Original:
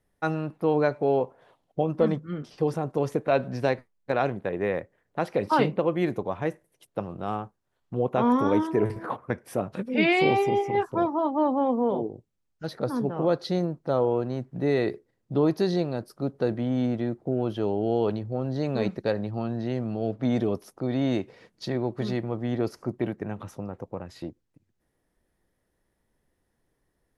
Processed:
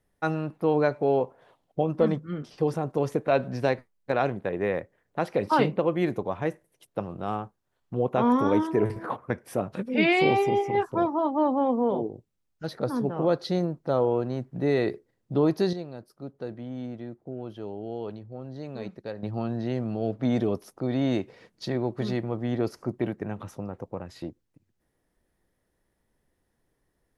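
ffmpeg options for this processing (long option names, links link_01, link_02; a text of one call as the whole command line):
ffmpeg -i in.wav -filter_complex "[0:a]asplit=3[link_01][link_02][link_03];[link_01]atrim=end=15.732[link_04];[link_02]atrim=start=15.728:end=19.232,asetpts=PTS-STARTPTS,volume=-10dB[link_05];[link_03]atrim=start=19.228[link_06];[link_04][link_05]acrossfade=duration=0.004:curve1=hsin:curve2=hsin[link_07];[link_07][link_06]acrossfade=duration=0.004:curve1=hsin:curve2=hsin" out.wav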